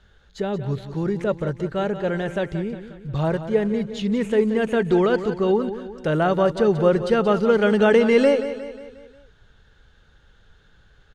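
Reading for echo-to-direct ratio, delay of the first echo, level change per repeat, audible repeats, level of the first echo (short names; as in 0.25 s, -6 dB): -10.5 dB, 0.179 s, -6.0 dB, 4, -11.5 dB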